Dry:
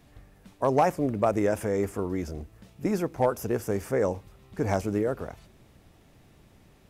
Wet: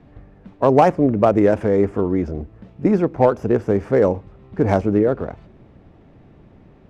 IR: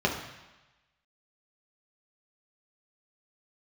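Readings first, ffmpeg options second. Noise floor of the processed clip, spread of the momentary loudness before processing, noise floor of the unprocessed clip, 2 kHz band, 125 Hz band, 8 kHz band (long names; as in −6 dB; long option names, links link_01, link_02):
−49 dBFS, 14 LU, −58 dBFS, +6.0 dB, +9.5 dB, can't be measured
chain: -filter_complex "[0:a]equalizer=frequency=270:width=0.51:gain=4,acrossover=split=650[link_01][link_02];[link_02]adynamicsmooth=sensitivity=4:basefreq=2200[link_03];[link_01][link_03]amix=inputs=2:normalize=0,volume=7dB"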